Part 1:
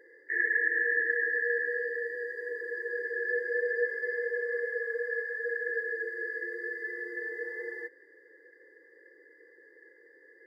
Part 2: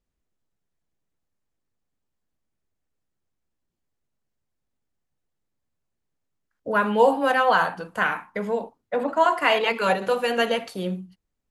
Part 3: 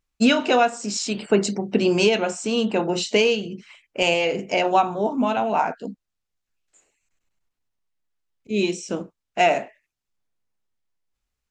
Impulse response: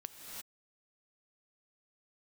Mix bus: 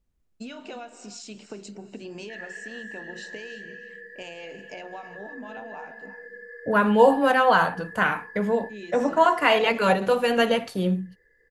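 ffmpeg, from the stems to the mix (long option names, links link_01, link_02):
-filter_complex "[0:a]highpass=540,adelay=2000,volume=-5dB[link_01];[1:a]lowshelf=frequency=230:gain=9,volume=0dB[link_02];[2:a]acompressor=threshold=-19dB:ratio=6,adelay=200,volume=-13.5dB,asplit=2[link_03][link_04];[link_04]volume=-9.5dB[link_05];[link_01][link_03]amix=inputs=2:normalize=0,acompressor=threshold=-42dB:ratio=2,volume=0dB[link_06];[3:a]atrim=start_sample=2205[link_07];[link_05][link_07]afir=irnorm=-1:irlink=0[link_08];[link_02][link_06][link_08]amix=inputs=3:normalize=0"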